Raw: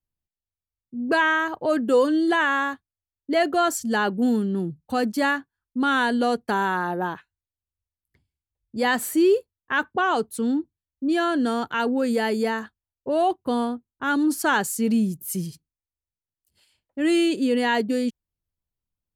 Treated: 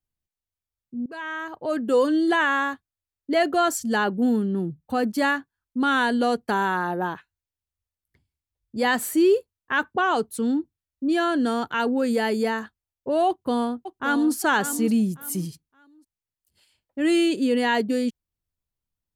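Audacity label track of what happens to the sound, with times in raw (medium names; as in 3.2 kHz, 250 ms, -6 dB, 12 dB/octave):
1.060000	2.120000	fade in, from -24 dB
4.040000	5.150000	peaking EQ 6.1 kHz -6 dB 2.1 oct
13.280000	14.330000	echo throw 570 ms, feedback 25%, level -10.5 dB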